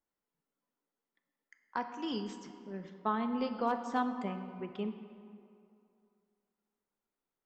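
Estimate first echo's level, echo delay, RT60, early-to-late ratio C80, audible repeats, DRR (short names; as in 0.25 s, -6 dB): none, none, 2.5 s, 9.5 dB, none, 7.0 dB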